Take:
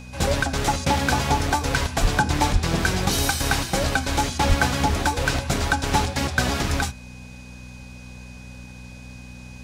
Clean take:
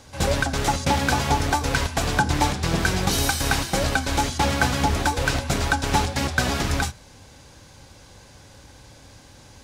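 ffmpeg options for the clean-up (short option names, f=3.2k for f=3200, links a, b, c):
-filter_complex "[0:a]bandreject=f=61.8:t=h:w=4,bandreject=f=123.6:t=h:w=4,bandreject=f=185.4:t=h:w=4,bandreject=f=247.2:t=h:w=4,bandreject=f=2.5k:w=30,asplit=3[a][b][c];[a]afade=t=out:st=2.01:d=0.02[d];[b]highpass=f=140:w=0.5412,highpass=f=140:w=1.3066,afade=t=in:st=2.01:d=0.02,afade=t=out:st=2.13:d=0.02[e];[c]afade=t=in:st=2.13:d=0.02[f];[d][e][f]amix=inputs=3:normalize=0,asplit=3[g][h][i];[g]afade=t=out:st=2.52:d=0.02[j];[h]highpass=f=140:w=0.5412,highpass=f=140:w=1.3066,afade=t=in:st=2.52:d=0.02,afade=t=out:st=2.64:d=0.02[k];[i]afade=t=in:st=2.64:d=0.02[l];[j][k][l]amix=inputs=3:normalize=0,asplit=3[m][n][o];[m]afade=t=out:st=4.48:d=0.02[p];[n]highpass=f=140:w=0.5412,highpass=f=140:w=1.3066,afade=t=in:st=4.48:d=0.02,afade=t=out:st=4.6:d=0.02[q];[o]afade=t=in:st=4.6:d=0.02[r];[p][q][r]amix=inputs=3:normalize=0"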